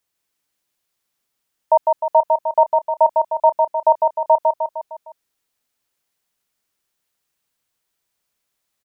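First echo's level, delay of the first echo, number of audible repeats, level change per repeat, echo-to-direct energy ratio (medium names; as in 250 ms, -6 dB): -3.5 dB, 153 ms, 5, -5.5 dB, -2.0 dB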